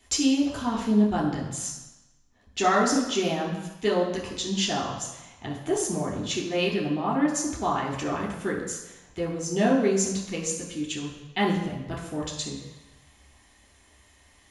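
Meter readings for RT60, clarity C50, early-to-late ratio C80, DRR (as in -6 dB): 1.0 s, 4.5 dB, 6.5 dB, -4.0 dB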